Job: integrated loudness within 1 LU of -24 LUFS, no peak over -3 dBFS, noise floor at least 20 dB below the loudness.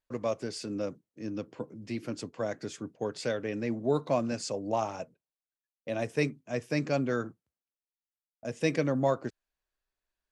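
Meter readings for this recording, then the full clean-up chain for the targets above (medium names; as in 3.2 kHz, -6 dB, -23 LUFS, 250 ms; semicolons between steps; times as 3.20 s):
loudness -33.0 LUFS; peak level -14.0 dBFS; loudness target -24.0 LUFS
-> trim +9 dB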